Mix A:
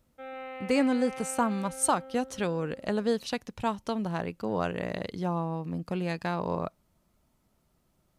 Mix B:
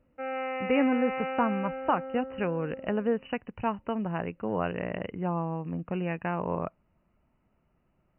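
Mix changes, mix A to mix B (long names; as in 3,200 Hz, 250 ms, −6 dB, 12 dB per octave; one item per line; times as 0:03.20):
background +7.5 dB
master: add linear-phase brick-wall low-pass 3,000 Hz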